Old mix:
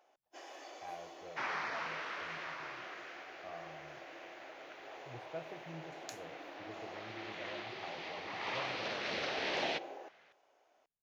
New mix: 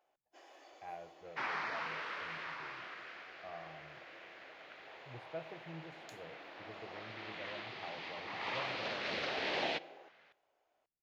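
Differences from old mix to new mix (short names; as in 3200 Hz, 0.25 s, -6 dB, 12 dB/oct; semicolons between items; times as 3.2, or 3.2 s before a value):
first sound -8.0 dB; master: add bell 5900 Hz -5.5 dB 0.29 oct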